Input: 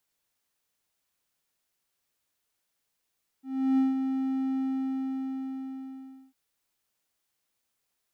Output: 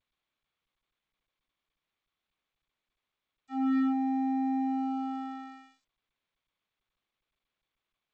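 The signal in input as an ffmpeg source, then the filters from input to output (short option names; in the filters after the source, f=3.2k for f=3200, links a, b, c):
-f lavfi -i "aevalsrc='0.133*(1-4*abs(mod(265*t+0.25,1)-0.5))':d=2.9:s=44100,afade=t=in:d=0.348,afade=t=out:st=0.348:d=0.163:silence=0.473,afade=t=out:st=1.15:d=1.75"
-af "asoftclip=type=tanh:threshold=-24.5dB,acrusher=bits=4:mix=0:aa=0.5" -ar 16000 -c:a g722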